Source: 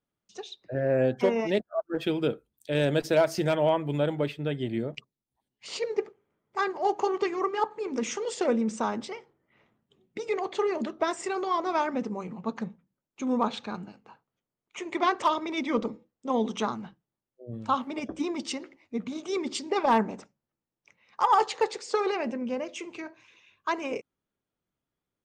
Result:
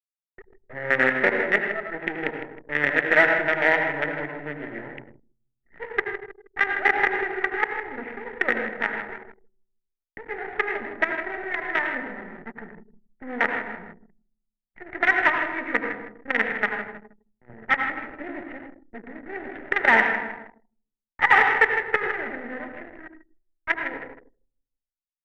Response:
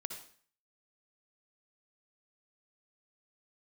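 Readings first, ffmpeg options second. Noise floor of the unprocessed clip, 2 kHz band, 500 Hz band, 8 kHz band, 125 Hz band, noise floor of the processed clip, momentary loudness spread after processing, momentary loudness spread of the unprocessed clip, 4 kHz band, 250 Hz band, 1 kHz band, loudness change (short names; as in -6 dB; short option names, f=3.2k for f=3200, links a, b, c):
under -85 dBFS, +17.0 dB, -2.0 dB, under -15 dB, -8.0 dB, under -85 dBFS, 20 LU, 16 LU, -1.5 dB, -4.5 dB, +1.0 dB, +5.5 dB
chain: -filter_complex "[0:a]aresample=8000,acrusher=bits=4:dc=4:mix=0:aa=0.000001,aresample=44100,aecho=1:1:158|316|474|632|790:0.316|0.136|0.0585|0.0251|0.0108[a];[1:a]atrim=start_sample=2205,asetrate=33516,aresample=44100[b];[a][b]afir=irnorm=-1:irlink=0,acrossover=split=190[c][d];[c]acompressor=threshold=-45dB:ratio=6[e];[e][d]amix=inputs=2:normalize=0,asuperstop=centerf=1100:order=4:qfactor=5.3,adynamicsmooth=sensitivity=7:basefreq=530,lowpass=f=1.9k:t=q:w=8.6,anlmdn=0.1,aeval=exprs='0.708*(cos(1*acos(clip(val(0)/0.708,-1,1)))-cos(1*PI/2))+0.00794*(cos(7*acos(clip(val(0)/0.708,-1,1)))-cos(7*PI/2))':c=same"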